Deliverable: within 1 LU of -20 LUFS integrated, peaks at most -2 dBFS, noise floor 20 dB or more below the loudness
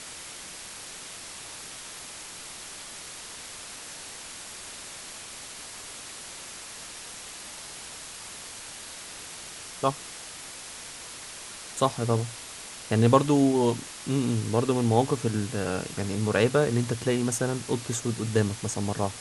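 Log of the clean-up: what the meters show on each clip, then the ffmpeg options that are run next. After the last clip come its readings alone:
noise floor -42 dBFS; noise floor target -50 dBFS; loudness -30.0 LUFS; peak -4.0 dBFS; loudness target -20.0 LUFS
-> -af "afftdn=nr=8:nf=-42"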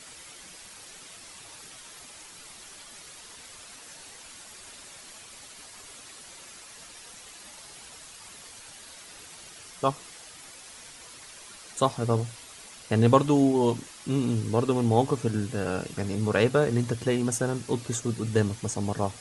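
noise floor -47 dBFS; loudness -26.5 LUFS; peak -4.0 dBFS; loudness target -20.0 LUFS
-> -af "volume=6.5dB,alimiter=limit=-2dB:level=0:latency=1"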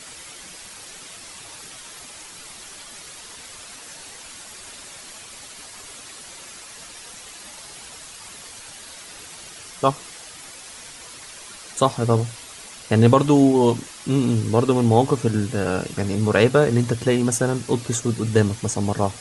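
loudness -20.0 LUFS; peak -2.0 dBFS; noise floor -41 dBFS

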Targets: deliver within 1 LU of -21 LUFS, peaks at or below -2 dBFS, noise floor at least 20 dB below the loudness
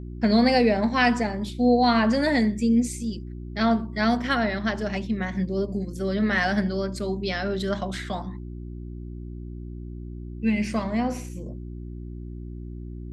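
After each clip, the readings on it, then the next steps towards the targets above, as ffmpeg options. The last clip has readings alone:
hum 60 Hz; harmonics up to 360 Hz; hum level -34 dBFS; loudness -24.0 LUFS; peak -7.5 dBFS; loudness target -21.0 LUFS
-> -af "bandreject=f=60:t=h:w=4,bandreject=f=120:t=h:w=4,bandreject=f=180:t=h:w=4,bandreject=f=240:t=h:w=4,bandreject=f=300:t=h:w=4,bandreject=f=360:t=h:w=4"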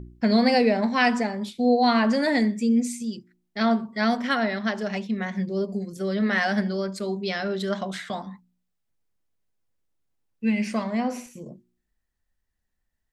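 hum none; loudness -24.5 LUFS; peak -7.0 dBFS; loudness target -21.0 LUFS
-> -af "volume=3.5dB"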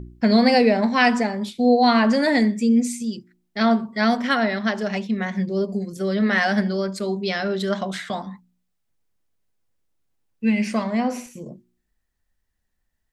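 loudness -21.0 LUFS; peak -3.5 dBFS; noise floor -74 dBFS

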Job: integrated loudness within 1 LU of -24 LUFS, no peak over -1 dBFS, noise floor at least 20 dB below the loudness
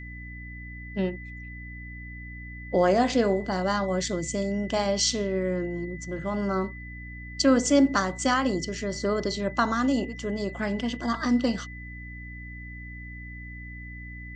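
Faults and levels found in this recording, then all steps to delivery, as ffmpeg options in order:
hum 60 Hz; harmonics up to 300 Hz; hum level -39 dBFS; steady tone 2000 Hz; tone level -42 dBFS; loudness -26.0 LUFS; peak -10.0 dBFS; loudness target -24.0 LUFS
-> -af "bandreject=f=60:t=h:w=6,bandreject=f=120:t=h:w=6,bandreject=f=180:t=h:w=6,bandreject=f=240:t=h:w=6,bandreject=f=300:t=h:w=6"
-af "bandreject=f=2k:w=30"
-af "volume=2dB"

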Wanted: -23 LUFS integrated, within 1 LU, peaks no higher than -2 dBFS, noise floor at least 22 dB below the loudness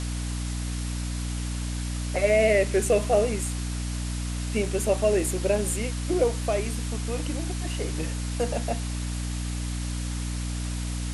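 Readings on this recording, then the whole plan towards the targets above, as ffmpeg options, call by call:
hum 60 Hz; harmonics up to 300 Hz; hum level -28 dBFS; noise floor -30 dBFS; noise floor target -50 dBFS; loudness -27.5 LUFS; peak -9.5 dBFS; loudness target -23.0 LUFS
-> -af "bandreject=f=60:t=h:w=6,bandreject=f=120:t=h:w=6,bandreject=f=180:t=h:w=6,bandreject=f=240:t=h:w=6,bandreject=f=300:t=h:w=6"
-af "afftdn=nr=20:nf=-30"
-af "volume=4.5dB"

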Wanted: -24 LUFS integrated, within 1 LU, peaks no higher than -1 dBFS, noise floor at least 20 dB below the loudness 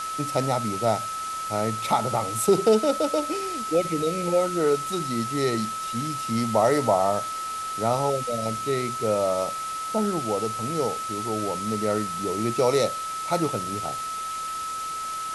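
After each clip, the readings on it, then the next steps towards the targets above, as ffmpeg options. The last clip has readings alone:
steady tone 1300 Hz; tone level -29 dBFS; noise floor -32 dBFS; noise floor target -46 dBFS; loudness -25.5 LUFS; peak -8.0 dBFS; loudness target -24.0 LUFS
-> -af "bandreject=f=1.3k:w=30"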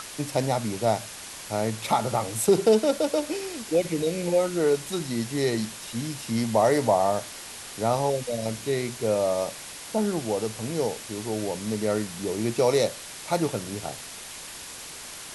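steady tone none; noise floor -40 dBFS; noise floor target -46 dBFS
-> -af "afftdn=nr=6:nf=-40"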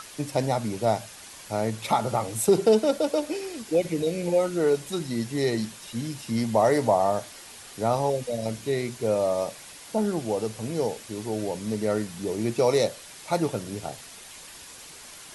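noise floor -45 dBFS; noise floor target -47 dBFS
-> -af "afftdn=nr=6:nf=-45"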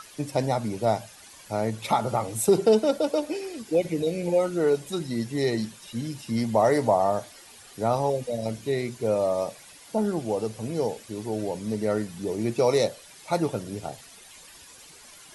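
noise floor -49 dBFS; loudness -26.5 LUFS; peak -8.5 dBFS; loudness target -24.0 LUFS
-> -af "volume=2.5dB"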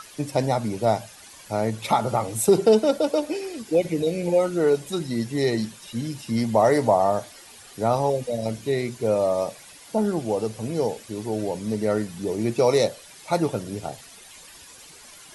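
loudness -24.0 LUFS; peak -6.0 dBFS; noise floor -47 dBFS

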